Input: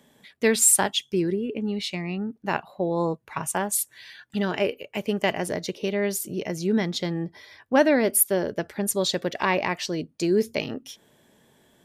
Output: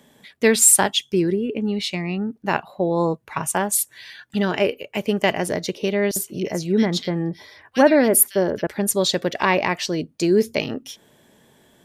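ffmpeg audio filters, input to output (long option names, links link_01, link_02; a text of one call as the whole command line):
ffmpeg -i in.wav -filter_complex "[0:a]asettb=1/sr,asplit=3[link_01][link_02][link_03];[link_01]atrim=end=6.114[link_04];[link_02]atrim=start=6.11:end=8.67,asetpts=PTS-STARTPTS,afade=type=in:duration=0.004:curve=qsin,afade=type=out:start_time=2.556:duration=0.004:curve=qsin,acrossover=split=2200[link_05][link_06];[link_05]adelay=50[link_07];[link_07][link_06]amix=inputs=2:normalize=0,atrim=end_sample=112896[link_08];[link_03]atrim=start=8.666[link_09];[link_04][link_08]acrossfade=duration=0.004:curve1=hsin:curve2=qsin[link_10];[link_10][link_09]acrossfade=duration=0.004:curve1=qsin:curve2=hsin,volume=4.5dB" out.wav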